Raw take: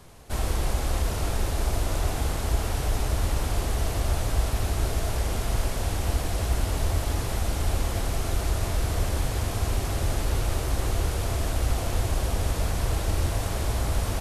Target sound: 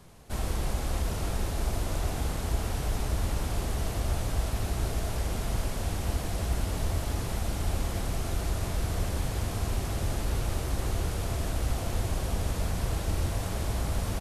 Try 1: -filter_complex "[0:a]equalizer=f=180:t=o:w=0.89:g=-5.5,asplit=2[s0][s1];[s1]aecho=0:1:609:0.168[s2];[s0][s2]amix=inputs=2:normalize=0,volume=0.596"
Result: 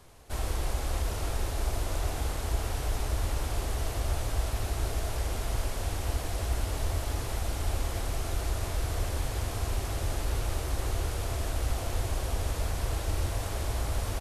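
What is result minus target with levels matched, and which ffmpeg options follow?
250 Hz band -4.0 dB
-filter_complex "[0:a]equalizer=f=180:t=o:w=0.89:g=5,asplit=2[s0][s1];[s1]aecho=0:1:609:0.168[s2];[s0][s2]amix=inputs=2:normalize=0,volume=0.596"

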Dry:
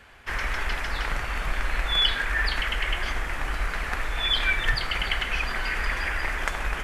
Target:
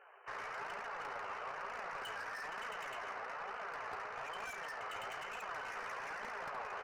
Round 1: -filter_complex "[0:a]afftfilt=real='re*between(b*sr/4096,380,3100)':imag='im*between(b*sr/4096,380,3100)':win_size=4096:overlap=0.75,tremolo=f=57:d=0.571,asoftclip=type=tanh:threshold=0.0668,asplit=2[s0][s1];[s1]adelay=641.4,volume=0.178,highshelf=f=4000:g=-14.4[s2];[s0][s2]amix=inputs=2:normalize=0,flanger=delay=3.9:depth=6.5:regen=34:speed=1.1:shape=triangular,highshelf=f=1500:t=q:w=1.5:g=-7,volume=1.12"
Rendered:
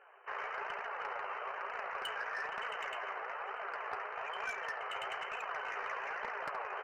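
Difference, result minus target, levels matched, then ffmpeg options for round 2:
saturation: distortion -7 dB
-filter_complex "[0:a]afftfilt=real='re*between(b*sr/4096,380,3100)':imag='im*between(b*sr/4096,380,3100)':win_size=4096:overlap=0.75,tremolo=f=57:d=0.571,asoftclip=type=tanh:threshold=0.0211,asplit=2[s0][s1];[s1]adelay=641.4,volume=0.178,highshelf=f=4000:g=-14.4[s2];[s0][s2]amix=inputs=2:normalize=0,flanger=delay=3.9:depth=6.5:regen=34:speed=1.1:shape=triangular,highshelf=f=1500:t=q:w=1.5:g=-7,volume=1.12"

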